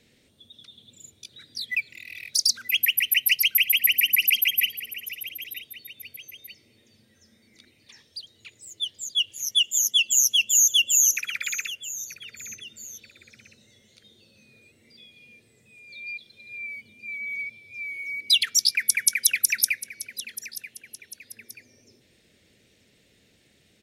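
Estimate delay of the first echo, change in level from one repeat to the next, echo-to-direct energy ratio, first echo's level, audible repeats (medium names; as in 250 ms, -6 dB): 933 ms, -7.0 dB, -14.5 dB, -15.5 dB, 2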